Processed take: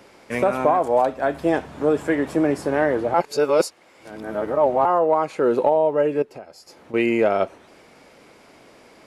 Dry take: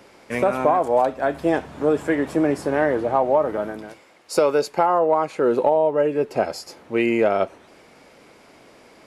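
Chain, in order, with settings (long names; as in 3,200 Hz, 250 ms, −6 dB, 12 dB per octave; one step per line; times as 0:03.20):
0:03.14–0:04.85: reverse
0:06.22–0:06.94: downward compressor 4 to 1, threshold −39 dBFS, peak gain reduction 19.5 dB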